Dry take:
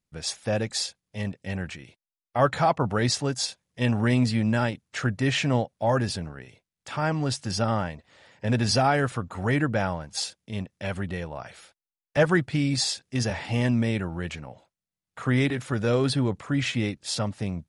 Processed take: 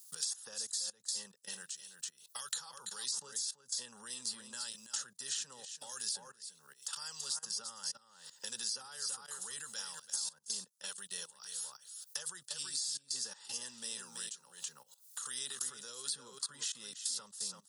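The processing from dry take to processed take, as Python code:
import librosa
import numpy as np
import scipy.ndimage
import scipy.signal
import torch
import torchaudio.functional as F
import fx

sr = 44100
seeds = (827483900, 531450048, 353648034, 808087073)

y = fx.high_shelf(x, sr, hz=2900.0, db=7.5)
y = fx.fixed_phaser(y, sr, hz=450.0, stages=8)
y = y + 10.0 ** (-10.0 / 20.0) * np.pad(y, (int(332 * sr / 1000.0), 0))[:len(y)]
y = fx.level_steps(y, sr, step_db=18)
y = np.diff(y, prepend=0.0)
y = fx.band_squash(y, sr, depth_pct=100)
y = y * 10.0 ** (3.0 / 20.0)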